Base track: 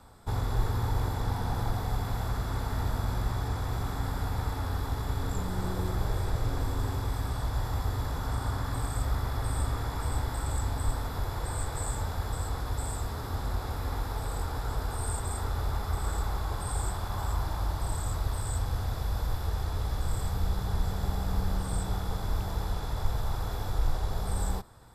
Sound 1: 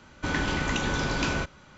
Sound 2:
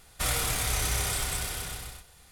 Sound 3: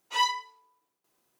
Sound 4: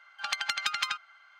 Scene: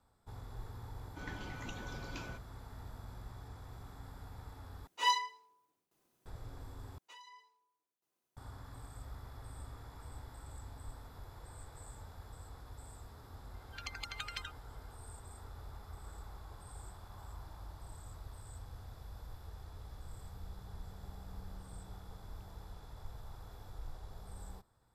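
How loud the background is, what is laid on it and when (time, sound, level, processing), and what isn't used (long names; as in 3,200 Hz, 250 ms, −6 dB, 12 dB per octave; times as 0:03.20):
base track −18.5 dB
0:00.93: mix in 1 −16.5 dB + spectral dynamics exaggerated over time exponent 1.5
0:04.87: overwrite with 3 −5 dB + low-shelf EQ 300 Hz +9 dB
0:06.98: overwrite with 3 −14 dB + downward compressor 20 to 1, threshold −37 dBFS
0:13.54: mix in 4 −12.5 dB + time-frequency cells dropped at random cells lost 22%
not used: 2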